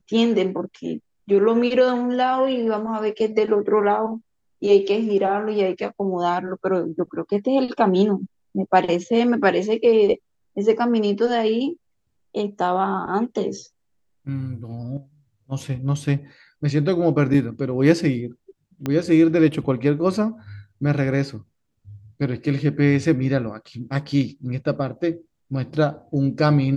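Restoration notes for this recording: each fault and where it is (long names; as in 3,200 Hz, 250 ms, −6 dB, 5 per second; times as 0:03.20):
0:18.86: click −12 dBFS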